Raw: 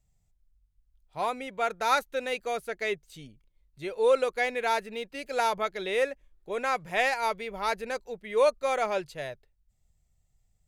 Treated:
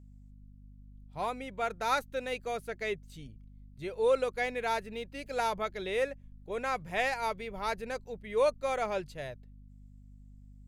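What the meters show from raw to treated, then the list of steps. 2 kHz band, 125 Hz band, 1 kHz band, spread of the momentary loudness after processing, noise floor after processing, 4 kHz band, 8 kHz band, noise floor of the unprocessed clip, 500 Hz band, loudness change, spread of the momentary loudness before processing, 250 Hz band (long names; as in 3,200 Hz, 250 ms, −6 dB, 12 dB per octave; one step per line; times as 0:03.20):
−5.0 dB, +3.5 dB, −4.5 dB, 14 LU, −55 dBFS, −5.0 dB, −5.0 dB, −72 dBFS, −4.0 dB, −4.5 dB, 13 LU, −1.5 dB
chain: low-shelf EQ 200 Hz +8.5 dB
mains hum 50 Hz, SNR 18 dB
level −5 dB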